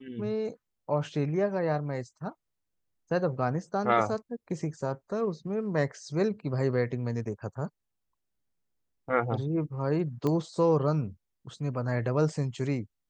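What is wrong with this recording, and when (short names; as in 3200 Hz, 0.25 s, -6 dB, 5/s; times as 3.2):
10.27 pop -18 dBFS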